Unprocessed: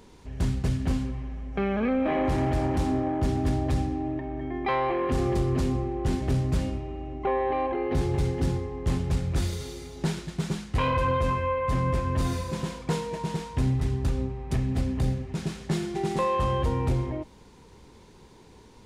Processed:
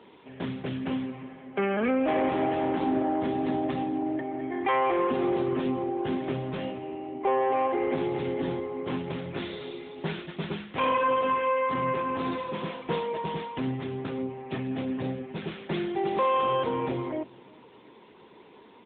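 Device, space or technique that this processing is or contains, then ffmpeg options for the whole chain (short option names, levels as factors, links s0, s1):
telephone: -filter_complex "[0:a]highpass=f=73:p=1,aemphasis=mode=production:type=75kf,asplit=3[s0][s1][s2];[s0]afade=t=out:st=6.3:d=0.02[s3];[s1]adynamicequalizer=threshold=0.00708:dfrequency=270:dqfactor=2.4:tfrequency=270:tqfactor=2.4:attack=5:release=100:ratio=0.375:range=2:mode=cutabove:tftype=bell,afade=t=in:st=6.3:d=0.02,afade=t=out:st=6.82:d=0.02[s4];[s2]afade=t=in:st=6.82:d=0.02[s5];[s3][s4][s5]amix=inputs=3:normalize=0,highpass=250,lowpass=3600,asplit=2[s6][s7];[s7]adelay=354,lowpass=f=1200:p=1,volume=0.0708,asplit=2[s8][s9];[s9]adelay=354,lowpass=f=1200:p=1,volume=0.29[s10];[s6][s8][s10]amix=inputs=3:normalize=0,asoftclip=type=tanh:threshold=0.0944,volume=1.5" -ar 8000 -c:a libopencore_amrnb -b:a 10200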